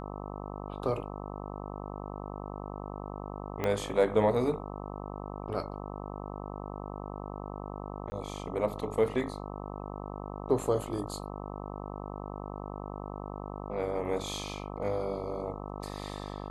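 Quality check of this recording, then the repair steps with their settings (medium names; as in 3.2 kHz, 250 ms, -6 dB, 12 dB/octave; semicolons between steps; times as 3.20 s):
buzz 50 Hz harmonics 26 -40 dBFS
3.64 s: pop -17 dBFS
8.10–8.12 s: dropout 20 ms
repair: de-click; de-hum 50 Hz, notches 26; interpolate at 8.10 s, 20 ms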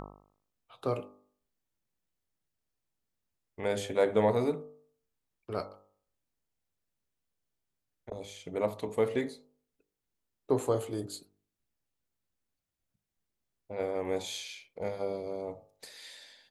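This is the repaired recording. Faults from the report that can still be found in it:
3.64 s: pop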